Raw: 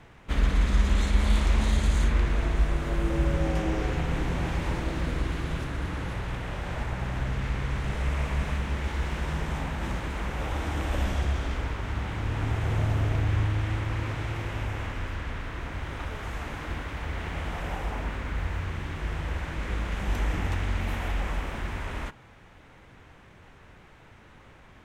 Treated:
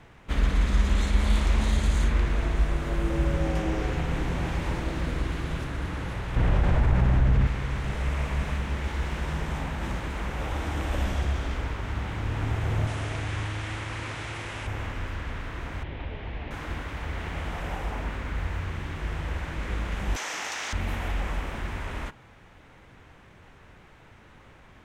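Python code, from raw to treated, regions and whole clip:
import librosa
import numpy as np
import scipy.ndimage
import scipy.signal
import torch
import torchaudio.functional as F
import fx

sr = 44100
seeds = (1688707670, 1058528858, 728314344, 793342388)

y = fx.chain(x, sr, fx.tilt_eq(slope=-2.0),
    fx.env_flatten(amount_pct=70), at=(6.36, 7.47))
y = fx.chain(y, sr, fx.tilt_eq(slope=2.0),
    fx.resample_bad(factor=2, down='none', up='filtered'), at=(12.87, 14.67))
y = fx.chain(y, sr, fx.lowpass(hz=3500.0, slope=24),
    fx.peak_eq(hz=1300.0, db=-10.0, octaves=0.78), at=(15.83, 16.51))
y = fx.chain(y, sr, fx.highpass(hz=650.0, slope=12),
    fx.peak_eq(hz=5900.0, db=14.0, octaves=1.1),
    fx.env_flatten(amount_pct=100), at=(20.16, 20.73))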